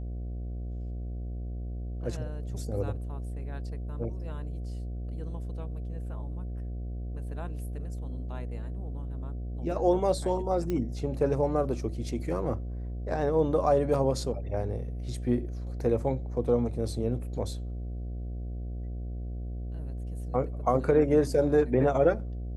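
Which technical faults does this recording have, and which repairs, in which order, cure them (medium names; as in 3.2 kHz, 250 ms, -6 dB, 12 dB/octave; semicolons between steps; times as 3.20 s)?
buzz 60 Hz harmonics 12 -35 dBFS
10.70 s: pop -19 dBFS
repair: de-click; de-hum 60 Hz, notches 12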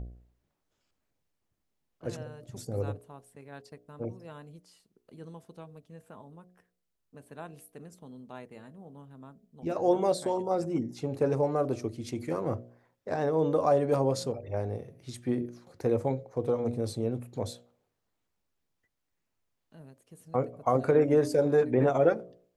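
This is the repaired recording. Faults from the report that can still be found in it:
nothing left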